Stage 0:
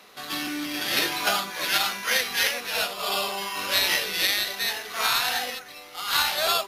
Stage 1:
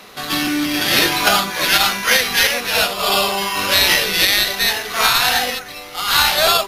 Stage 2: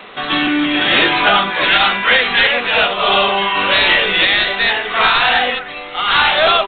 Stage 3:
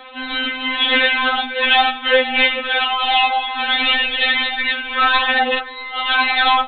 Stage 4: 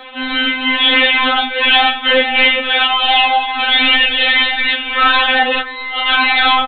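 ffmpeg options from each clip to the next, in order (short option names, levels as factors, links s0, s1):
-af "lowshelf=f=150:g=10.5,alimiter=level_in=3.55:limit=0.891:release=50:level=0:latency=1,volume=0.891"
-af "equalizer=f=77:w=0.51:g=-9,aresample=8000,asoftclip=type=tanh:threshold=0.266,aresample=44100,volume=2.11"
-af "afftfilt=real='re*3.46*eq(mod(b,12),0)':imag='im*3.46*eq(mod(b,12),0)':win_size=2048:overlap=0.75"
-filter_complex "[0:a]apsyclip=3.35,asplit=2[s0][s1];[s1]aecho=0:1:19|30:0.473|0.398[s2];[s0][s2]amix=inputs=2:normalize=0,volume=0.473"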